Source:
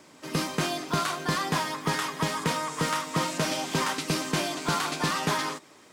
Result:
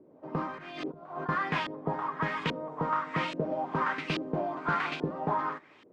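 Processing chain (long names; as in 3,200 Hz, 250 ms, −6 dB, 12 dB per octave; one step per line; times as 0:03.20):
0:00.58–0:01.29: compressor whose output falls as the input rises −38 dBFS, ratio −1
auto-filter low-pass saw up 1.2 Hz 390–3,200 Hz
level −5 dB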